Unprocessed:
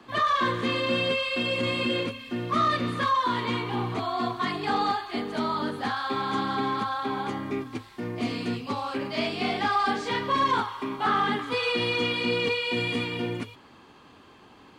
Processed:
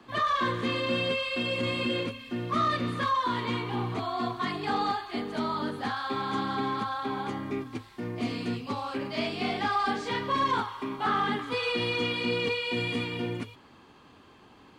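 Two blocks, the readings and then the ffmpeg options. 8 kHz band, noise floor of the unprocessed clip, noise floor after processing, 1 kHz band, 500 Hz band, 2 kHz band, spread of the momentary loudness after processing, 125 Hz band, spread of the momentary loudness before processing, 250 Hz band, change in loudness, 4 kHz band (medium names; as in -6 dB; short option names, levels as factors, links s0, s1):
-3.0 dB, -52 dBFS, -55 dBFS, -3.0 dB, -2.5 dB, -3.0 dB, 7 LU, -1.0 dB, 7 LU, -2.0 dB, -2.5 dB, -3.0 dB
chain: -af "lowshelf=f=190:g=3,volume=0.708"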